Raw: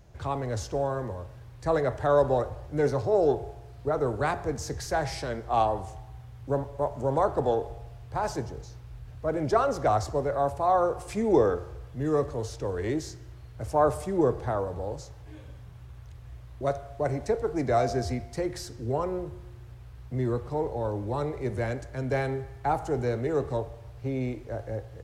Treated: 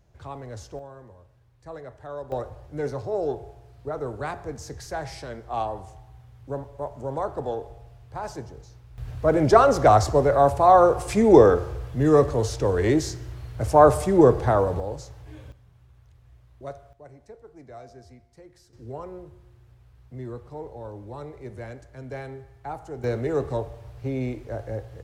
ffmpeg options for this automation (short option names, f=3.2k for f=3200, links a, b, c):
-af "asetnsamples=n=441:p=0,asendcmd='0.79 volume volume -14dB;2.32 volume volume -4dB;8.98 volume volume 8.5dB;14.8 volume volume 2dB;15.52 volume volume -9dB;16.93 volume volume -19dB;18.73 volume volume -8dB;23.04 volume volume 2dB',volume=-7dB"